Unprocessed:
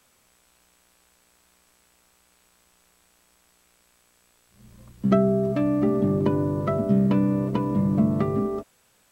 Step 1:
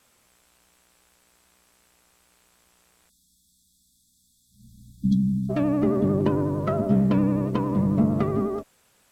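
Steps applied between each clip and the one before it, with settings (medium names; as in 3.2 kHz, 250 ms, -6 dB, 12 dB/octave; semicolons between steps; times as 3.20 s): Chebyshev shaper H 6 -27 dB, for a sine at -7 dBFS; vibrato 11 Hz 64 cents; spectral selection erased 3.09–5.50 s, 300–3300 Hz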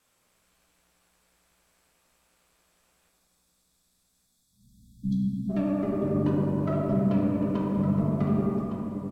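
delay 1160 ms -10.5 dB; simulated room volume 130 m³, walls hard, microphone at 0.49 m; trim -9 dB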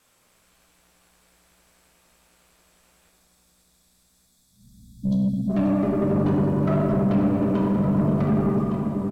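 saturation -23 dBFS, distortion -13 dB; feedback delay 534 ms, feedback 56%, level -12.5 dB; trim +7 dB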